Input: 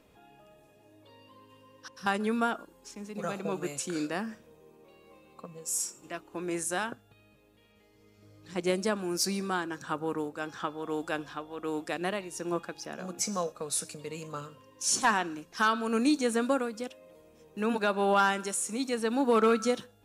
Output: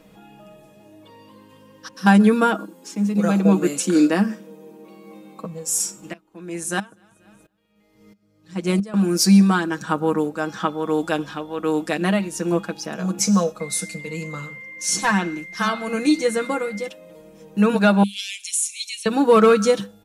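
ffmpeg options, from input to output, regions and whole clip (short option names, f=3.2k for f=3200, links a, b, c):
-filter_complex "[0:a]asettb=1/sr,asplit=3[a][b][c];[a]atrim=end=1.954[d];[b]atrim=start=1.95:end=5.45,asetpts=PTS-STARTPTS,afade=t=in:d=0.004:c=qsin,afade=t=out:st=3.496:d=0.004:c=qsin,highpass=f=250:t=q:w=2.1,highshelf=f=12k:g=4[e];[c]atrim=start=5.446[f];[d][e]acrossfade=d=0.004:c1=hsin:c2=qsin[g];[g][f]acrossfade=d=0.004:c1=qsin:c2=hsin,asettb=1/sr,asplit=3[h][i][j];[h]atrim=end=6.134[k];[i]atrim=start=6.13:end=8.94,asetpts=PTS-STARTPTS,afade=t=in:d=0.004:c=qsin,afade=t=out:st=2.806:d=0.004:c=qsin,aecho=1:1:242|484|726:0.0891|0.0383|0.0165,atrim=end_sample=123921,aeval=exprs='val(0)*pow(10,-23*if(lt(mod(-1.5*n/s,1),2*abs(-1.5)/1000),1-mod(-1.5*n/s,1)/(2*abs(-1.5)/1000),(mod(-1.5*n/s,1)-2*abs(-1.5)/1000)/(1-2*abs(-1.5)/1000))/20)':c=same[l];[j]atrim=start=8.936[m];[k][l]acrossfade=d=0.004:c1=hsin:c2=qsin[n];[n][m]acrossfade=d=0.004:c1=qsin:c2=hsin,asettb=1/sr,asplit=3[o][p][q];[o]atrim=end=13.604[r];[p]atrim=start=13.6:end=16.88,asetpts=PTS-STARTPTS,afade=t=in:d=0.004:c=qsin,afade=t=out:st=3.276:d=0.004:c=qsin,aecho=1:1:5.8:0.44,atrim=end_sample=144648,flanger=delay=6.5:depth=5.1:regen=-81:speed=1.5:shape=triangular,aeval=exprs='val(0)+0.00501*sin(2*PI*2100*n/s)':c=same[s];[q]atrim=start=16.876[t];[r][s]acrossfade=d=0.004:c1=hsin:c2=qsin[u];[u][t]acrossfade=d=0.004:c1=qsin:c2=hsin,asettb=1/sr,asplit=3[v][w][x];[v]atrim=end=18.034[y];[w]atrim=start=18.03:end=19.06,asetpts=PTS-STARTPTS,afade=t=in:d=0.004:c=qsin,afade=t=out:st=1.026:d=0.004:c=qsin,asuperpass=centerf=5800:order=20:qfactor=0.57,aecho=1:1:6:0.35,atrim=end_sample=45423[z];[x]atrim=start=19.056[aa];[y][z]acrossfade=d=0.004:c1=hsin:c2=qsin[ab];[ab][aa]acrossfade=d=0.004:c1=qsin:c2=hsin,equalizer=f=200:t=o:w=0.21:g=14,aecho=1:1:6.3:0.61,volume=8dB"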